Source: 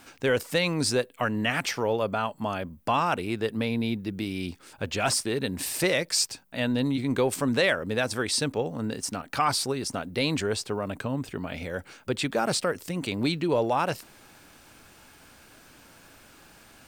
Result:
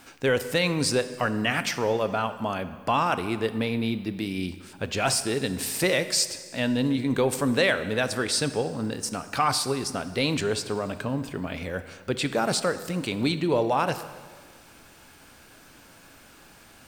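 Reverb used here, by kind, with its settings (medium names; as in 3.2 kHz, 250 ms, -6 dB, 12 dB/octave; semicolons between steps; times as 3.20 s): plate-style reverb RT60 1.7 s, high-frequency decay 0.85×, DRR 11 dB; trim +1 dB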